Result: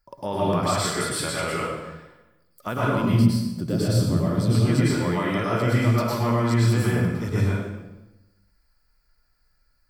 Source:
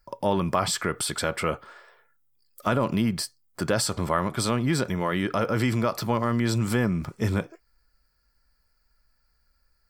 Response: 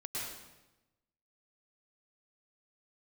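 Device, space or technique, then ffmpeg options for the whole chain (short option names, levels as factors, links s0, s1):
bathroom: -filter_complex "[0:a]asettb=1/sr,asplit=3[s0][s1][s2];[s0]atrim=end=3.024[s3];[s1]atrim=start=3.02:end=4.55,asetpts=PTS-STARTPTS,afade=t=in:d=0.004:c=qsin,afade=t=out:st=1.526:d=0.004:c=qsin,equalizer=f=125:t=o:w=1:g=8,equalizer=f=250:t=o:w=1:g=5,equalizer=f=1000:t=o:w=1:g=-11,equalizer=f=2000:t=o:w=1:g=-9,equalizer=f=8000:t=o:w=1:g=-8[s4];[s2]atrim=start=4.546[s5];[s3][s4]acrossfade=d=0.004:c1=hsin:c2=qsin[s6];[s6][s5]acrossfade=d=0.004:c1=qsin:c2=hsin[s7];[1:a]atrim=start_sample=2205[s8];[s7][s8]afir=irnorm=-1:irlink=0"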